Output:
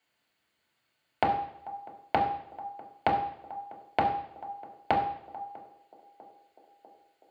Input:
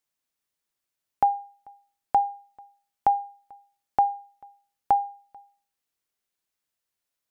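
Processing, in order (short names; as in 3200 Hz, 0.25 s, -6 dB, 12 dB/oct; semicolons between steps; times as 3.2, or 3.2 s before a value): compressor 6:1, threshold -35 dBFS, peak gain reduction 17 dB; narrowing echo 0.647 s, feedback 76%, band-pass 450 Hz, level -19.5 dB; reverb RT60 0.75 s, pre-delay 3 ms, DRR -2.5 dB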